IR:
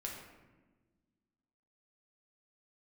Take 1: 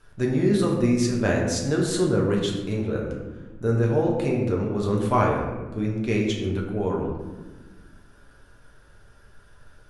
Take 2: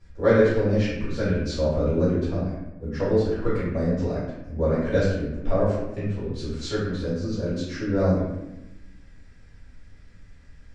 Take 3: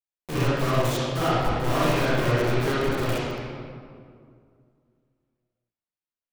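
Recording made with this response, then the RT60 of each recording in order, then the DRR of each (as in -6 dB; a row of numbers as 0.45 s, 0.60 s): 1; 1.3 s, 0.95 s, 2.2 s; -2.0 dB, -12.5 dB, -11.0 dB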